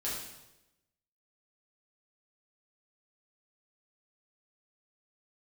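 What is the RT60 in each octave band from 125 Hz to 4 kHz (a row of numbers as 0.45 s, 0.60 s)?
1.0 s, 1.0 s, 1.0 s, 0.90 s, 0.85 s, 0.85 s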